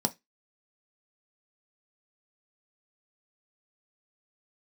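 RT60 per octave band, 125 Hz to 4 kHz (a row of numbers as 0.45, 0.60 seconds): 0.20, 0.20, 0.20, 0.15, 0.20, 0.20 seconds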